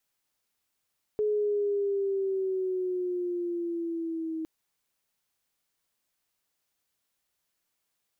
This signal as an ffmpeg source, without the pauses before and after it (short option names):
-f lavfi -i "aevalsrc='pow(10,(-23.5-7*t/3.26)/20)*sin(2*PI*425*3.26/(-5*log(2)/12)*(exp(-5*log(2)/12*t/3.26)-1))':d=3.26:s=44100"